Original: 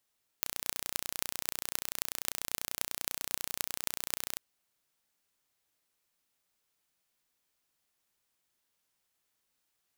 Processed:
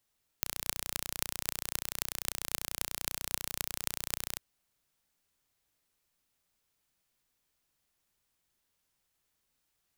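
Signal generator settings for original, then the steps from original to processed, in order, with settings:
impulse train 30.2 per second, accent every 8, −2 dBFS 3.95 s
low-shelf EQ 140 Hz +10 dB

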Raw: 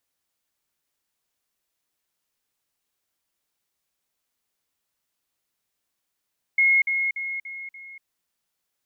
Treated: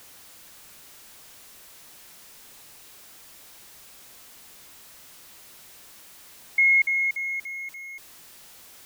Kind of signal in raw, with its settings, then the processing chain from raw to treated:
level staircase 2,160 Hz −15 dBFS, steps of −6 dB, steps 5, 0.24 s 0.05 s
converter with a step at zero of −42.5 dBFS

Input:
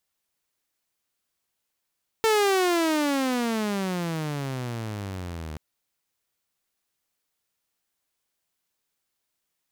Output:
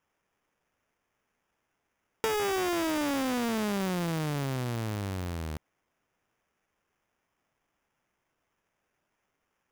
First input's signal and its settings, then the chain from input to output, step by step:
pitch glide with a swell saw, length 3.33 s, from 450 Hz, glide −31 semitones, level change −15.5 dB, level −15.5 dB
downward compressor 6 to 1, threshold −27 dBFS
sample-rate reduction 4,200 Hz, jitter 0%

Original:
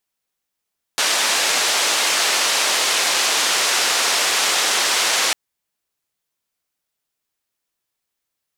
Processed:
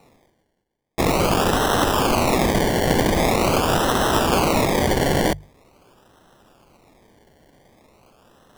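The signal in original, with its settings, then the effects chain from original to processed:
band-limited noise 470–6,500 Hz, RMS −18.5 dBFS 4.35 s
sample-and-hold swept by an LFO 27×, swing 60% 0.44 Hz
reversed playback
upward compression, threshold −32 dBFS
reversed playback
mains-hum notches 50/100/150 Hz

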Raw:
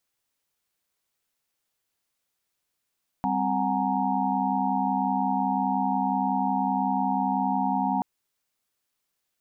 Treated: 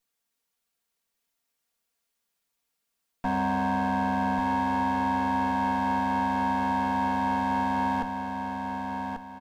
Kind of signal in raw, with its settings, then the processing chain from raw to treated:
held notes G3/C4/F#5/G#5/A#5 sine, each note −29 dBFS 4.78 s
lower of the sound and its delayed copy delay 4.3 ms
repeating echo 1,140 ms, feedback 32%, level −6 dB

